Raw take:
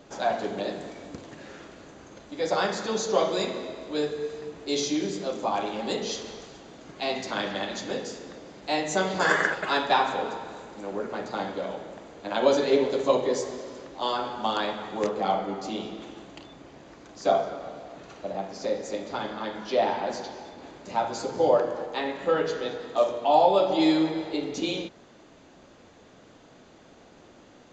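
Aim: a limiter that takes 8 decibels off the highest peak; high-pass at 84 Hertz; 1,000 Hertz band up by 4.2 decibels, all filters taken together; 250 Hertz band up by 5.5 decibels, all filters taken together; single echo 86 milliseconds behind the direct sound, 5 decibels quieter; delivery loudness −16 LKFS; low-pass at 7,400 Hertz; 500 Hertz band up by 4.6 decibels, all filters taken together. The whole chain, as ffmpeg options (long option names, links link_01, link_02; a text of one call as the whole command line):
ffmpeg -i in.wav -af "highpass=84,lowpass=7400,equalizer=frequency=250:width_type=o:gain=6,equalizer=frequency=500:width_type=o:gain=3,equalizer=frequency=1000:width_type=o:gain=4,alimiter=limit=-11dB:level=0:latency=1,aecho=1:1:86:0.562,volume=7.5dB" out.wav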